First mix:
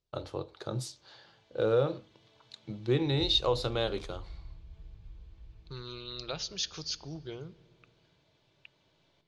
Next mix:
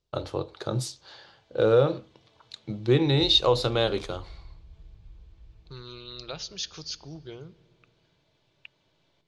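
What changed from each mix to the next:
first voice +6.5 dB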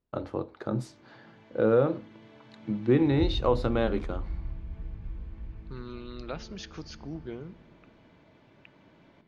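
first voice -4.0 dB; background +10.5 dB; master: add EQ curve 150 Hz 0 dB, 230 Hz +12 dB, 400 Hz +1 dB, 2000 Hz +2 dB, 3700 Hz -12 dB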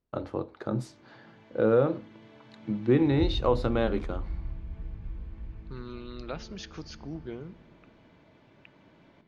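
none

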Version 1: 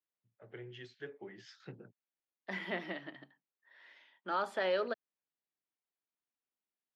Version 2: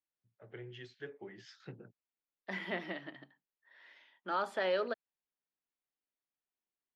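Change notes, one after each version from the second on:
master: remove HPF 99 Hz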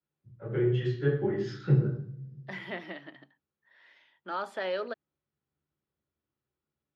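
reverb: on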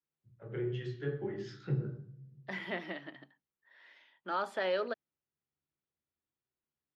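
first voice: send -10.0 dB

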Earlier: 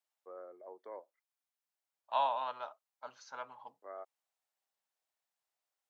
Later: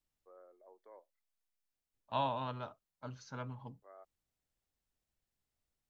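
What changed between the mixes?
first voice -10.0 dB; second voice: remove resonant high-pass 750 Hz, resonance Q 1.6

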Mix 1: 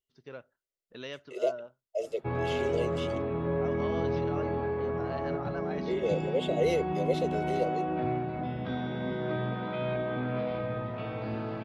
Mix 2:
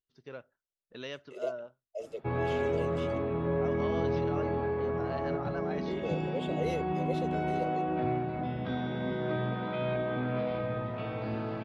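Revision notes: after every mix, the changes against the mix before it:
second voice -7.0 dB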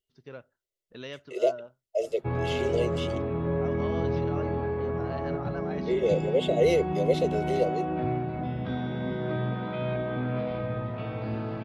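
second voice +11.0 dB; master: add low shelf 170 Hz +6.5 dB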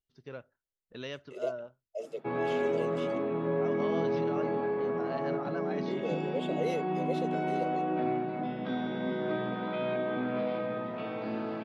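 second voice -10.5 dB; background: add HPF 190 Hz 24 dB/oct

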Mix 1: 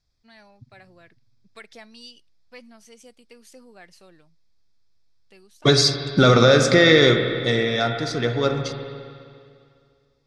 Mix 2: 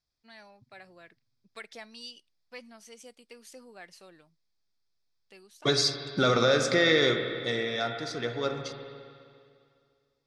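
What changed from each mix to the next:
second voice -7.5 dB; master: add low shelf 180 Hz -10 dB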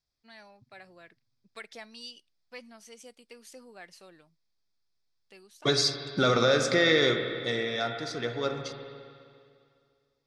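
none

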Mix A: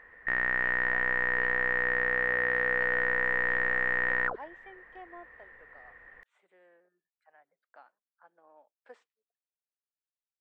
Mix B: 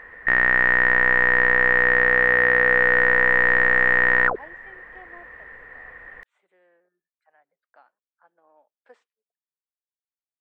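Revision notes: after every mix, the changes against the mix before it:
background +10.5 dB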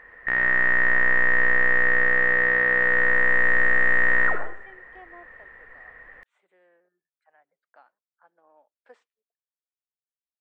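background -9.0 dB; reverb: on, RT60 0.55 s

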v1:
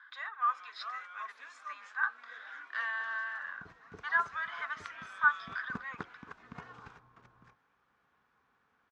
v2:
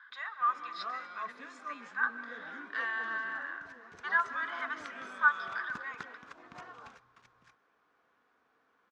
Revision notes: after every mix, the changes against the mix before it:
first sound: remove HPF 1100 Hz 12 dB/oct; second sound: add tilt shelf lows -9 dB, about 1500 Hz; reverb: on, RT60 2.5 s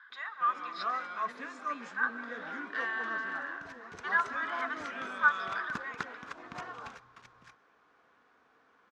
first sound +6.0 dB; second sound +7.0 dB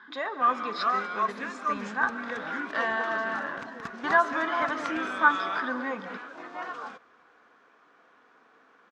speech: remove ladder high-pass 1100 Hz, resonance 40%; first sound +7.0 dB; second sound: entry -1.90 s

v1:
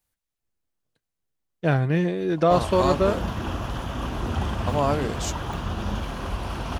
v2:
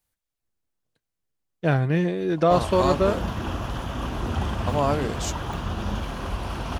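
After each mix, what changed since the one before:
none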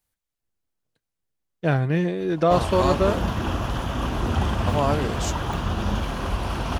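background +3.5 dB

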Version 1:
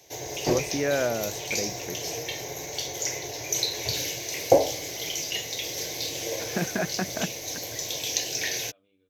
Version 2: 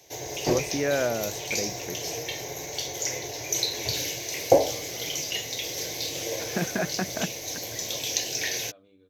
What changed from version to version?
second voice: remove ladder low-pass 3400 Hz, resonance 55%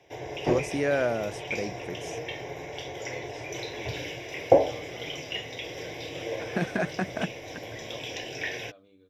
background: add polynomial smoothing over 25 samples

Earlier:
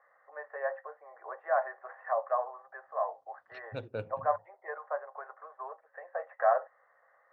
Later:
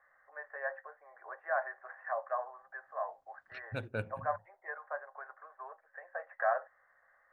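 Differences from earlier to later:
first voice -5.5 dB; master: remove speaker cabinet 110–6000 Hz, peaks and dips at 210 Hz -5 dB, 470 Hz +4 dB, 1600 Hz -9 dB, 2300 Hz -5 dB

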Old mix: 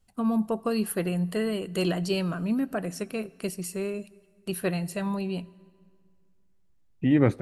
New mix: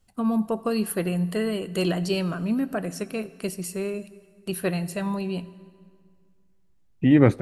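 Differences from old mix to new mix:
first voice: send +7.0 dB; second voice +4.5 dB

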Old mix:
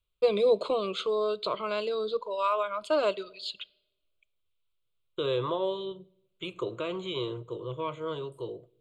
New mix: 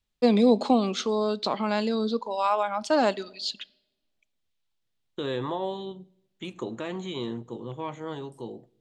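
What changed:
second voice -3.5 dB; master: remove fixed phaser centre 1200 Hz, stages 8

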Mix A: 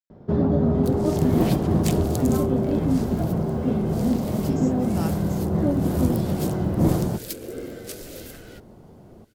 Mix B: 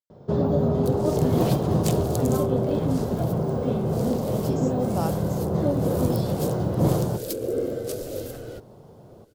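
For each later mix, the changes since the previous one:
first sound: add tilt shelf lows -9.5 dB, about 1500 Hz; master: add graphic EQ 125/500/1000/2000 Hz +11/+10/+4/-7 dB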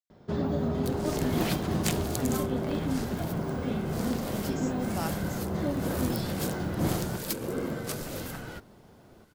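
second sound: remove fixed phaser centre 400 Hz, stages 4; master: add graphic EQ 125/500/1000/2000 Hz -11/-10/-4/+7 dB

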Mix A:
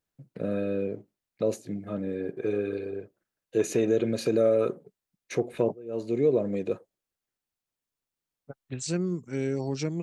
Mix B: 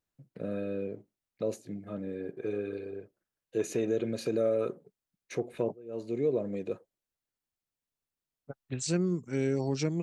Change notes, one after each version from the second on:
first voice -5.5 dB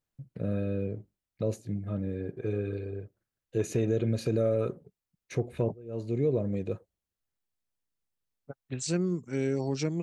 first voice: remove HPF 240 Hz 12 dB/oct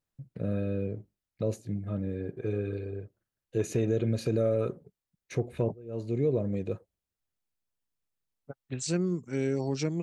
none

